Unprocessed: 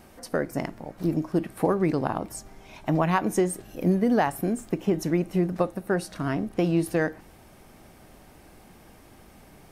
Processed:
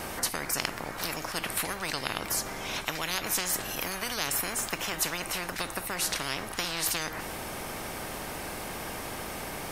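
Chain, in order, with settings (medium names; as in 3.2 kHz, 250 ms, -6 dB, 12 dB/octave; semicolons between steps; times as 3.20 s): spectrum-flattening compressor 10:1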